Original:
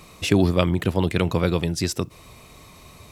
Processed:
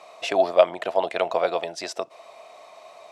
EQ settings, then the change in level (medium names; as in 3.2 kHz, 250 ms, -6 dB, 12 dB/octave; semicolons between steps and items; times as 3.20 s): resonant high-pass 660 Hz, resonance Q 6.8; distance through air 93 m; treble shelf 10 kHz +6 dB; -2.0 dB